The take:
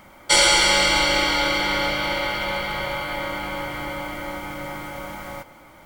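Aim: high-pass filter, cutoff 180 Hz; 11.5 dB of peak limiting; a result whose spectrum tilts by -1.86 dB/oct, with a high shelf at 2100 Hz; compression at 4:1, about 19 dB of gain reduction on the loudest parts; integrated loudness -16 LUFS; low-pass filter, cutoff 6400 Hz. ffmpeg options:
-af "highpass=180,lowpass=6.4k,highshelf=f=2.1k:g=7,acompressor=threshold=-33dB:ratio=4,volume=20dB,alimiter=limit=-8dB:level=0:latency=1"

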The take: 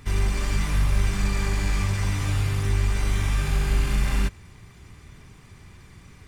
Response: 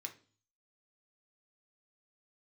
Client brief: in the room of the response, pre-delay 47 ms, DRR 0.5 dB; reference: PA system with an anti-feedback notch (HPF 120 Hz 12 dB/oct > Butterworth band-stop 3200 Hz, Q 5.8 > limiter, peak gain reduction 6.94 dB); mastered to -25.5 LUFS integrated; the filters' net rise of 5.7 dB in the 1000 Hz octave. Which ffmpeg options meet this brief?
-filter_complex "[0:a]equalizer=f=1k:t=o:g=7,asplit=2[a][b];[1:a]atrim=start_sample=2205,adelay=47[c];[b][c]afir=irnorm=-1:irlink=0,volume=2.5dB[d];[a][d]amix=inputs=2:normalize=0,highpass=120,asuperstop=centerf=3200:order=8:qfactor=5.8,volume=4dB,alimiter=limit=-16.5dB:level=0:latency=1"

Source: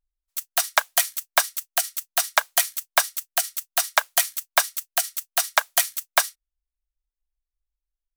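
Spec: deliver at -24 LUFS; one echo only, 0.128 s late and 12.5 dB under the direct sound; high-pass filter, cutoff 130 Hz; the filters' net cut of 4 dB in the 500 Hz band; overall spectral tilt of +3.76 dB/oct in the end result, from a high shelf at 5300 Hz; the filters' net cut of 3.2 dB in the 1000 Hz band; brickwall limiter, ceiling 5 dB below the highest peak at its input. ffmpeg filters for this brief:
-af "highpass=130,equalizer=f=500:t=o:g=-4.5,equalizer=f=1k:t=o:g=-3,highshelf=f=5.3k:g=5,alimiter=limit=-4dB:level=0:latency=1,aecho=1:1:128:0.237,volume=-2dB"

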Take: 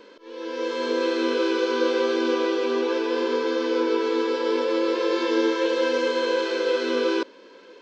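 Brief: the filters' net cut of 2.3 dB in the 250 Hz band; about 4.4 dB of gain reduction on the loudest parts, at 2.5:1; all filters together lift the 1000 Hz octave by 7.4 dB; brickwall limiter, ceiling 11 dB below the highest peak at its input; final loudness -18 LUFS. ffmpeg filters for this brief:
-af "equalizer=f=250:t=o:g=-4.5,equalizer=f=1k:t=o:g=8,acompressor=threshold=-24dB:ratio=2.5,volume=15dB,alimiter=limit=-10dB:level=0:latency=1"

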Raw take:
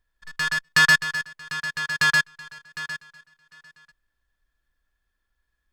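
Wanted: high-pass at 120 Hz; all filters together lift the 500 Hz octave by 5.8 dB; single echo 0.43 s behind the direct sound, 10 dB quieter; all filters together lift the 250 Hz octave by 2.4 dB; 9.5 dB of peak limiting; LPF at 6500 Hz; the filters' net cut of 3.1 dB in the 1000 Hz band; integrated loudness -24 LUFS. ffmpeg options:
-af "highpass=120,lowpass=6.5k,equalizer=f=250:t=o:g=6,equalizer=f=500:t=o:g=7.5,equalizer=f=1k:t=o:g=-6,alimiter=limit=-18.5dB:level=0:latency=1,aecho=1:1:430:0.316,volume=4dB"

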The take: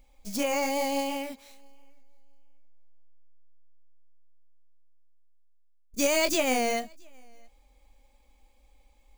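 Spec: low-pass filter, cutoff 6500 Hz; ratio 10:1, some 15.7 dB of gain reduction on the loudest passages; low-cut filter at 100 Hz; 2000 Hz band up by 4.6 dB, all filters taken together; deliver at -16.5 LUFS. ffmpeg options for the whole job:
-af "highpass=100,lowpass=6.5k,equalizer=f=2k:t=o:g=5.5,acompressor=threshold=-36dB:ratio=10,volume=23dB"

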